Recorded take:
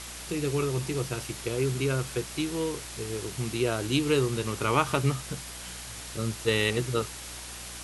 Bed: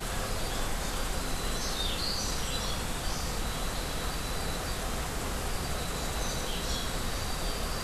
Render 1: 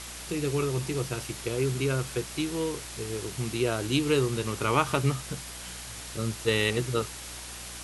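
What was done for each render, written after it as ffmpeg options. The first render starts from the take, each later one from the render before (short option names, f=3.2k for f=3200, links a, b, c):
-af anull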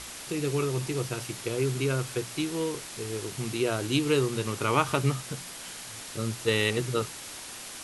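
-af "bandreject=f=60:t=h:w=4,bandreject=f=120:t=h:w=4,bandreject=f=180:t=h:w=4"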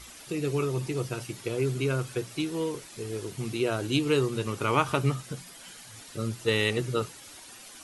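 -af "afftdn=nr=10:nf=-42"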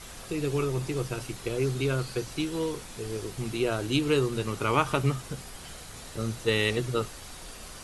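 -filter_complex "[1:a]volume=-13dB[a];[0:a][a]amix=inputs=2:normalize=0"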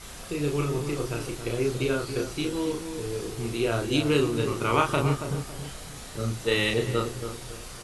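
-filter_complex "[0:a]asplit=2[a][b];[b]adelay=34,volume=-3dB[c];[a][c]amix=inputs=2:normalize=0,asplit=2[d][e];[e]adelay=278,lowpass=f=1.1k:p=1,volume=-7.5dB,asplit=2[f][g];[g]adelay=278,lowpass=f=1.1k:p=1,volume=0.38,asplit=2[h][i];[i]adelay=278,lowpass=f=1.1k:p=1,volume=0.38,asplit=2[j][k];[k]adelay=278,lowpass=f=1.1k:p=1,volume=0.38[l];[d][f][h][j][l]amix=inputs=5:normalize=0"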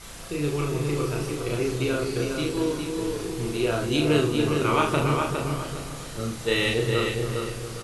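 -filter_complex "[0:a]asplit=2[a][b];[b]adelay=40,volume=-6dB[c];[a][c]amix=inputs=2:normalize=0,asplit=2[d][e];[e]adelay=408,lowpass=f=4.7k:p=1,volume=-4.5dB,asplit=2[f][g];[g]adelay=408,lowpass=f=4.7k:p=1,volume=0.31,asplit=2[h][i];[i]adelay=408,lowpass=f=4.7k:p=1,volume=0.31,asplit=2[j][k];[k]adelay=408,lowpass=f=4.7k:p=1,volume=0.31[l];[d][f][h][j][l]amix=inputs=5:normalize=0"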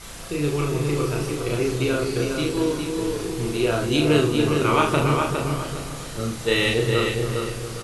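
-af "volume=3dB"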